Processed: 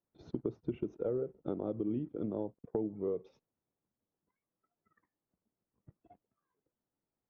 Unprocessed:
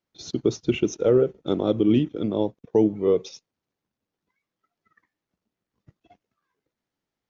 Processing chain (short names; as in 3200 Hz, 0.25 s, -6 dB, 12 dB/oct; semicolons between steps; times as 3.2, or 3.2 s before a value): LPF 1100 Hz 12 dB/oct; compressor 4:1, threshold -29 dBFS, peak gain reduction 13 dB; gain -4.5 dB